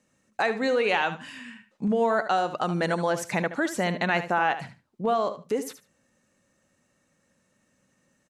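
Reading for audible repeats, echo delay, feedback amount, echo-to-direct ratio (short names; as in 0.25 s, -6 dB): 2, 74 ms, 18%, -12.0 dB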